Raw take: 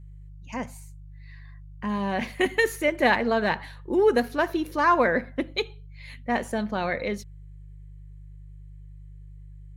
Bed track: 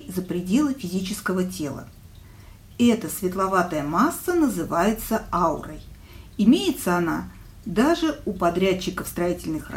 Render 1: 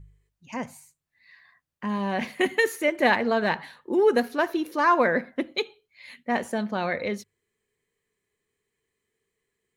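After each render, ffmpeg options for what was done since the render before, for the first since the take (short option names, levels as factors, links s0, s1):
-af "bandreject=f=50:t=h:w=4,bandreject=f=100:t=h:w=4,bandreject=f=150:t=h:w=4"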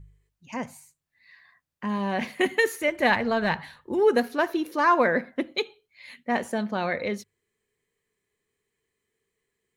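-filter_complex "[0:a]asplit=3[s0][s1][s2];[s0]afade=t=out:st=2.8:d=0.02[s3];[s1]asubboost=boost=7:cutoff=120,afade=t=in:st=2.8:d=0.02,afade=t=out:st=4:d=0.02[s4];[s2]afade=t=in:st=4:d=0.02[s5];[s3][s4][s5]amix=inputs=3:normalize=0"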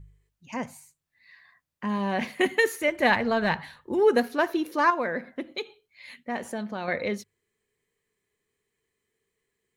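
-filter_complex "[0:a]asettb=1/sr,asplit=3[s0][s1][s2];[s0]atrim=end=4.904[s3];[s1]atrim=start=4.9:end=6.88,asetpts=PTS-STARTPTS,afade=t=in:d=0.004:c=qsin,afade=t=out:st=1.976:d=0.004:c=qsin,acompressor=threshold=0.0141:ratio=1.5:attack=3.2:release=140:knee=1:detection=peak[s4];[s2]atrim=start=6.876[s5];[s3][s4]acrossfade=d=0.004:c1=hsin:c2=qsin[s6];[s6][s5]acrossfade=d=0.004:c1=qsin:c2=hsin"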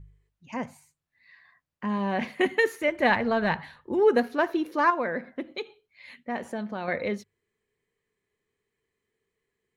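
-af "highshelf=f=5000:g=-10.5"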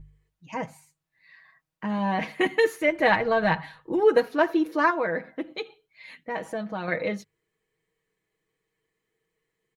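-af "equalizer=f=800:t=o:w=0.77:g=2,aecho=1:1:6.3:0.69"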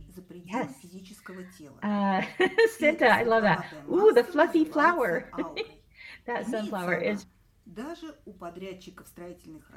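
-filter_complex "[1:a]volume=0.112[s0];[0:a][s0]amix=inputs=2:normalize=0"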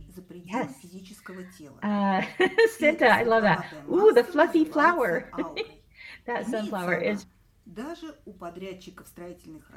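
-af "volume=1.19"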